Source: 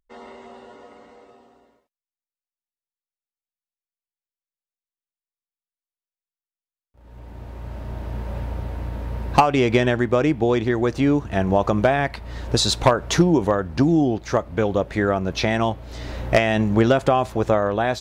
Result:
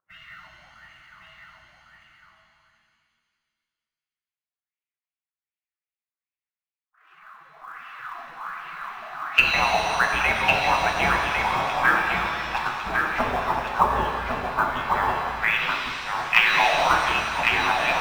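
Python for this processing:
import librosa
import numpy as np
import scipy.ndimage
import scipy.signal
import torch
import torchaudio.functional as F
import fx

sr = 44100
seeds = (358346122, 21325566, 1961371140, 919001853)

p1 = fx.spec_quant(x, sr, step_db=15)
p2 = fx.graphic_eq(p1, sr, hz=(125, 250, 500, 1000, 2000, 4000), db=(-5, 8, 7, 3, -12, -9))
p3 = fx.spec_gate(p2, sr, threshold_db=-30, keep='weak')
p4 = fx.filter_lfo_lowpass(p3, sr, shape='sine', hz=1.3, low_hz=640.0, high_hz=2700.0, q=4.6)
p5 = fx.quant_float(p4, sr, bits=2)
p6 = p4 + F.gain(torch.from_numpy(p5), -7.0).numpy()
p7 = p6 + 10.0 ** (-4.5 / 20.0) * np.pad(p6, (int(1103 * sr / 1000.0), 0))[:len(p6)]
p8 = fx.rev_shimmer(p7, sr, seeds[0], rt60_s=2.1, semitones=7, shimmer_db=-8, drr_db=1.5)
y = F.gain(torch.from_numpy(p8), 7.5).numpy()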